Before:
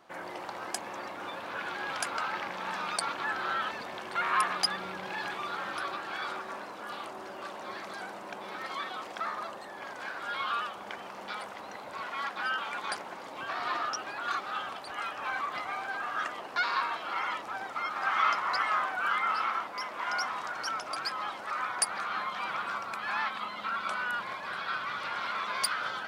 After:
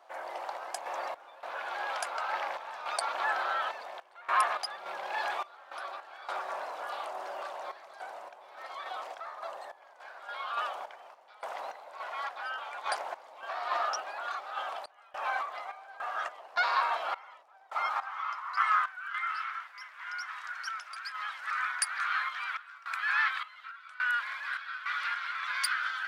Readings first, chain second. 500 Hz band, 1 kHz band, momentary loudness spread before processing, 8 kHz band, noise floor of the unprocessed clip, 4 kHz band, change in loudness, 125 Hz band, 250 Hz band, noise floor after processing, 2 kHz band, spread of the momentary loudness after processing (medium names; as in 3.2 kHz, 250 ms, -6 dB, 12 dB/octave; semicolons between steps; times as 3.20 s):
-0.5 dB, -1.0 dB, 11 LU, -3.5 dB, -44 dBFS, -4.0 dB, -1.0 dB, no reading, under -15 dB, -56 dBFS, 0.0 dB, 14 LU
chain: high-pass sweep 660 Hz -> 1.6 kHz, 17.57–19.11 s; random-step tremolo 3.5 Hz, depth 95%